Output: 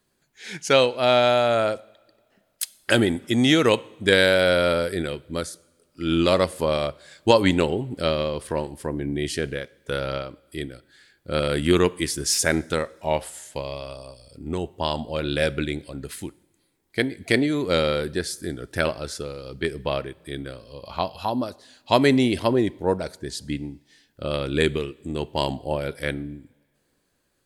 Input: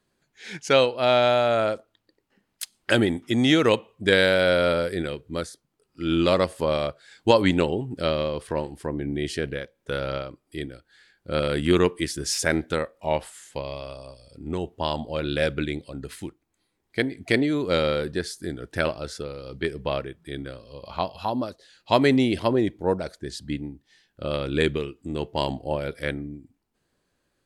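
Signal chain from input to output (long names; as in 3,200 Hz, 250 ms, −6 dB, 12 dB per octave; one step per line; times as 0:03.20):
high-shelf EQ 8,000 Hz +9.5 dB
on a send: convolution reverb, pre-delay 3 ms, DRR 20 dB
on the sum: level +1 dB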